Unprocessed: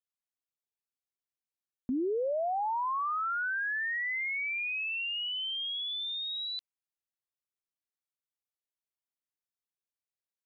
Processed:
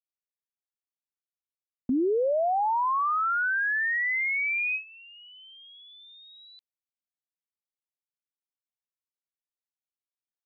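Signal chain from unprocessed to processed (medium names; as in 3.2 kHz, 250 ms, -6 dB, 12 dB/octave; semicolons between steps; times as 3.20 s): gate with hold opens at -27 dBFS; trim +6 dB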